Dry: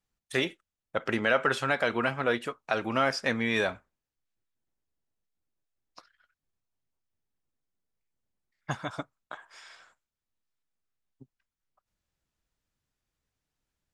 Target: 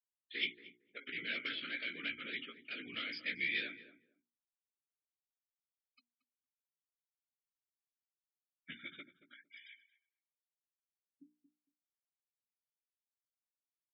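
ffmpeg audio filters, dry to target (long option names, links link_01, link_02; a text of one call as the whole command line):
ffmpeg -i in.wav -filter_complex "[0:a]tremolo=f=6.7:d=0.49,aresample=11025,asoftclip=type=hard:threshold=-27dB,aresample=44100,afftfilt=real='hypot(re,im)*cos(2*PI*random(0))':imag='hypot(re,im)*sin(2*PI*random(1))':win_size=512:overlap=0.75,asplit=3[link_01][link_02][link_03];[link_01]bandpass=frequency=270:width_type=q:width=8,volume=0dB[link_04];[link_02]bandpass=frequency=2290:width_type=q:width=8,volume=-6dB[link_05];[link_03]bandpass=frequency=3010:width_type=q:width=8,volume=-9dB[link_06];[link_04][link_05][link_06]amix=inputs=3:normalize=0,lowshelf=frequency=75:gain=5.5,afftfilt=real='re*lt(hypot(re,im),0.0282)':imag='im*lt(hypot(re,im),0.0282)':win_size=1024:overlap=0.75,tiltshelf=frequency=830:gain=-7.5,asplit=2[link_07][link_08];[link_08]adelay=17,volume=-5dB[link_09];[link_07][link_09]amix=inputs=2:normalize=0,afftfilt=real='re*gte(hypot(re,im),0.000708)':imag='im*gte(hypot(re,im),0.000708)':win_size=1024:overlap=0.75,bandreject=frequency=60:width_type=h:width=6,bandreject=frequency=120:width_type=h:width=6,bandreject=frequency=180:width_type=h:width=6,bandreject=frequency=240:width_type=h:width=6,bandreject=frequency=300:width_type=h:width=6,bandreject=frequency=360:width_type=h:width=6,bandreject=frequency=420:width_type=h:width=6,asplit=2[link_10][link_11];[link_11]adelay=228,lowpass=frequency=930:poles=1,volume=-11.5dB,asplit=2[link_12][link_13];[link_13]adelay=228,lowpass=frequency=930:poles=1,volume=0.19[link_14];[link_12][link_14]amix=inputs=2:normalize=0[link_15];[link_10][link_15]amix=inputs=2:normalize=0,volume=10dB" out.wav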